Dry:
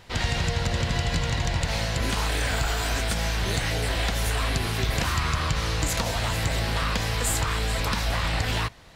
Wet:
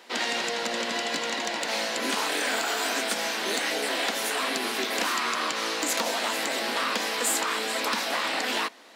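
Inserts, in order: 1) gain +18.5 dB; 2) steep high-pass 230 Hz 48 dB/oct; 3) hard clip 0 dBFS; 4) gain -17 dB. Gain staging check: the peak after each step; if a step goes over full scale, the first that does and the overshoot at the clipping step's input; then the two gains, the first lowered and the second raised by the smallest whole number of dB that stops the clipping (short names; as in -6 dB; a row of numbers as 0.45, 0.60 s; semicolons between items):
+4.5, +6.0, 0.0, -17.0 dBFS; step 1, 6.0 dB; step 1 +12.5 dB, step 4 -11 dB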